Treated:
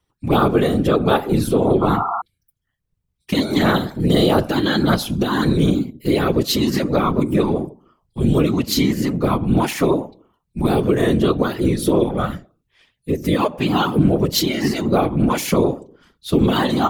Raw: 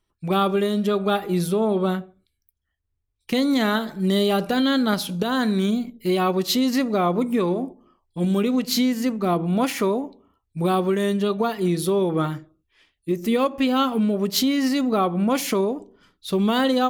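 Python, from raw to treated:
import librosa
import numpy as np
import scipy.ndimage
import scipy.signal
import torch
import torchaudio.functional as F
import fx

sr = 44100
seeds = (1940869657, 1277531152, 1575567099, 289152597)

y = x + 0.72 * np.pad(x, (int(4.9 * sr / 1000.0), 0))[:len(x)]
y = fx.whisperise(y, sr, seeds[0])
y = fx.spec_paint(y, sr, seeds[1], shape='noise', start_s=1.81, length_s=0.41, low_hz=680.0, high_hz=1400.0, level_db=-23.0)
y = y * 10.0 ** (1.0 / 20.0)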